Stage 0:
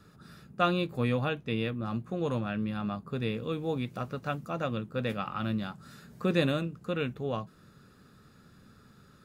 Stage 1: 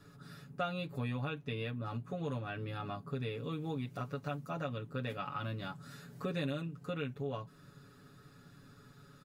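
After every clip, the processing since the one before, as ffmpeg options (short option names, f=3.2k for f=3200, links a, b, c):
-af "aecho=1:1:7.1:0.99,acompressor=threshold=-34dB:ratio=2.5,volume=-3.5dB"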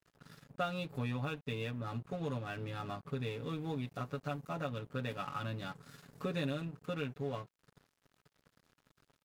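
-af "aeval=exprs='sgn(val(0))*max(abs(val(0))-0.00224,0)':c=same,volume=1dB"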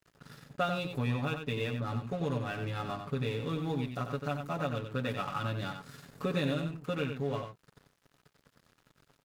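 -af "aecho=1:1:92:0.447,volume=4.5dB"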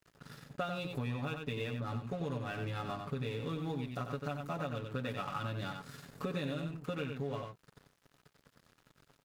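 -af "acompressor=threshold=-35dB:ratio=3"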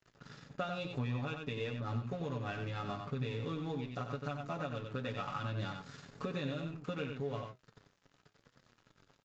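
-af "flanger=delay=7.6:depth=3.5:regen=74:speed=0.93:shape=triangular,aresample=16000,aresample=44100,volume=3.5dB"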